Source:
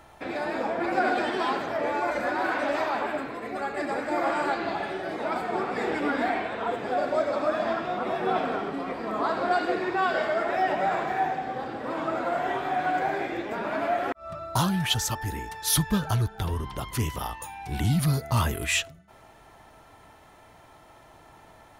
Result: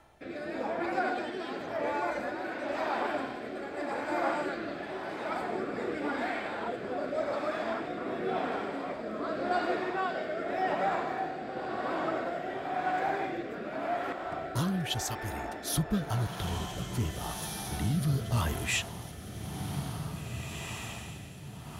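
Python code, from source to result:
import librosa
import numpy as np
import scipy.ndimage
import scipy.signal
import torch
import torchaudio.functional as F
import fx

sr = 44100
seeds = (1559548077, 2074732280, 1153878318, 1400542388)

y = fx.echo_diffused(x, sr, ms=1926, feedback_pct=49, wet_db=-6)
y = fx.rotary(y, sr, hz=0.9)
y = F.gain(torch.from_numpy(y), -4.0).numpy()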